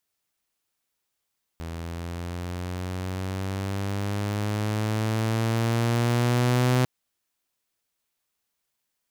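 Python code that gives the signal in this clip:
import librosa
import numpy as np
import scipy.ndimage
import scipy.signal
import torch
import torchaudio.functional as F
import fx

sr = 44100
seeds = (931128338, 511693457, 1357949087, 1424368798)

y = fx.riser_tone(sr, length_s=5.25, level_db=-16, wave='saw', hz=82.3, rise_st=7.5, swell_db=14)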